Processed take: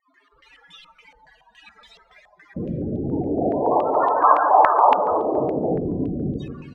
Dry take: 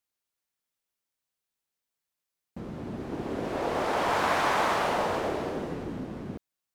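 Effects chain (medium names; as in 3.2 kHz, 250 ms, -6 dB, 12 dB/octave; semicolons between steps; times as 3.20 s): jump at every zero crossing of -35.5 dBFS; level rider gain up to 6.5 dB; in parallel at -6 dB: saturation -23.5 dBFS, distortion -8 dB; on the sum: loudest bins only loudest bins 16; multi-tap echo 143/245 ms -7/-20 dB; on a send at -7.5 dB: reverberation RT60 1.2 s, pre-delay 7 ms; on the sum: step-sequenced low-pass 7.1 Hz 790–3400 Hz; trim -2.5 dB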